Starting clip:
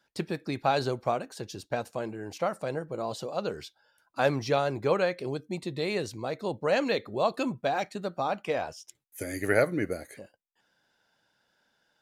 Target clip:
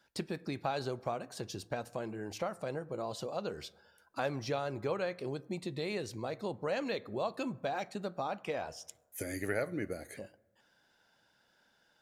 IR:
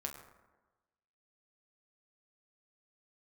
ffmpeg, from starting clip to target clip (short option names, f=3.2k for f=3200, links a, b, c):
-filter_complex "[0:a]acompressor=threshold=-41dB:ratio=2,asplit=2[a][b];[1:a]atrim=start_sample=2205,lowshelf=f=150:g=9[c];[b][c]afir=irnorm=-1:irlink=0,volume=-13.5dB[d];[a][d]amix=inputs=2:normalize=0"